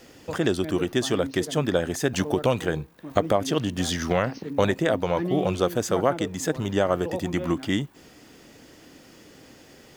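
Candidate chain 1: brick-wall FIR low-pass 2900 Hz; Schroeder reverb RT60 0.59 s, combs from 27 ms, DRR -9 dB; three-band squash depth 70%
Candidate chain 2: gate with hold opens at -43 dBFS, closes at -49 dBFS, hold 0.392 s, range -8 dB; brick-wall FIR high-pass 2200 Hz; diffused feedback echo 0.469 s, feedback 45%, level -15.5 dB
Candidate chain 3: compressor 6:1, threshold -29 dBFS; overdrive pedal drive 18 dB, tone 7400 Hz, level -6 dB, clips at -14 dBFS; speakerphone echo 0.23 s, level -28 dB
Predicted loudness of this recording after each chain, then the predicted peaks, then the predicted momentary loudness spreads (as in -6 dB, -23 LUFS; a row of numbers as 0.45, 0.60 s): -16.5, -36.0, -28.0 LUFS; -1.0, -16.0, -14.5 dBFS; 12, 20, 13 LU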